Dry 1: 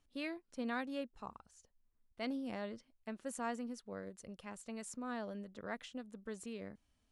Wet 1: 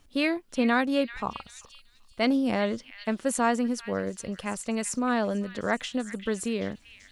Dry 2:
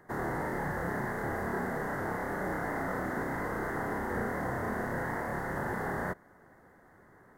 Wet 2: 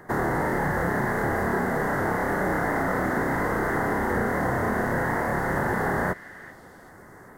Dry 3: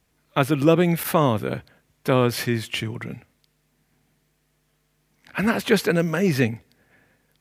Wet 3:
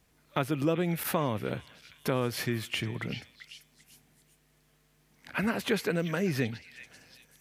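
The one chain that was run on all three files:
compression 2:1, threshold -34 dBFS; repeats whose band climbs or falls 388 ms, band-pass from 2.5 kHz, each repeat 0.7 oct, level -9 dB; peak normalisation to -12 dBFS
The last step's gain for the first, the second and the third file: +16.0 dB, +11.0 dB, +0.5 dB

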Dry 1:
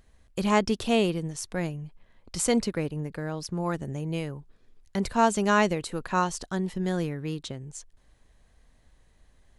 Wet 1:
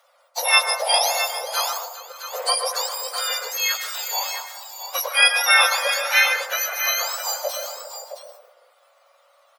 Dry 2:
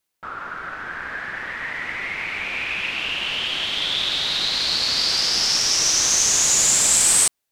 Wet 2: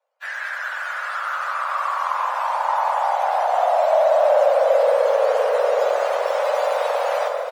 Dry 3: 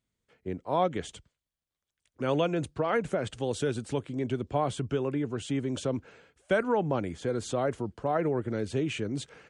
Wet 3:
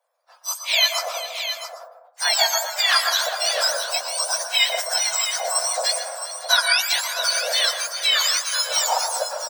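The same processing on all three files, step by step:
spectrum inverted on a logarithmic axis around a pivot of 1.5 kHz; steep high-pass 510 Hz 96 dB/octave; treble shelf 8.8 kHz -10.5 dB; in parallel at -1.5 dB: compression, threshold -34 dBFS; on the sum: multi-tap echo 402/566/665 ms -15.5/-19/-9.5 dB; plate-style reverb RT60 0.74 s, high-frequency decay 0.25×, pre-delay 105 ms, DRR 5.5 dB; normalise loudness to -20 LUFS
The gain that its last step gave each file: +8.0 dB, +2.0 dB, +11.5 dB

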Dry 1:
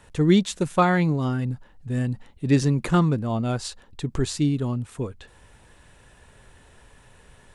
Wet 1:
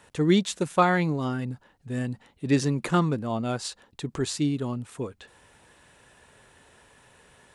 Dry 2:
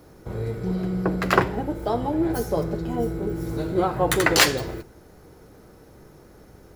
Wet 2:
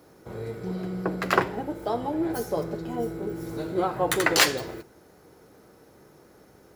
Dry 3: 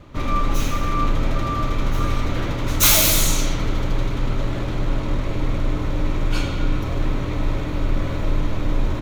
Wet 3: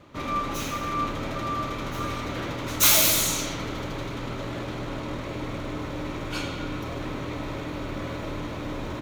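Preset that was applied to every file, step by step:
high-pass 220 Hz 6 dB/octave; normalise loudness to -27 LUFS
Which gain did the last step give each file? -0.5 dB, -2.5 dB, -3.0 dB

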